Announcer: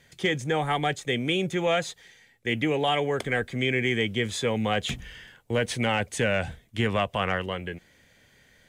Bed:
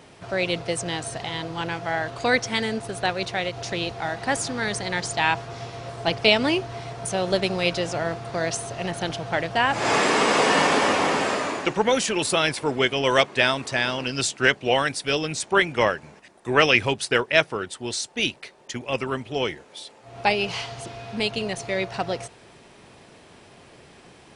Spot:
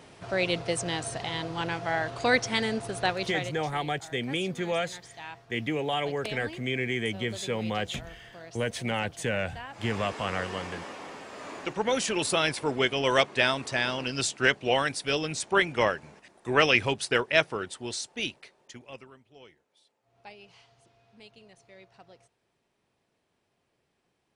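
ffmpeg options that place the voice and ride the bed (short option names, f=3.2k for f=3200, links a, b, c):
-filter_complex "[0:a]adelay=3050,volume=-4.5dB[a];[1:a]volume=14dB,afade=t=out:st=3.07:d=0.68:silence=0.125893,afade=t=in:st=11.31:d=0.8:silence=0.149624,afade=t=out:st=17.66:d=1.48:silence=0.0749894[b];[a][b]amix=inputs=2:normalize=0"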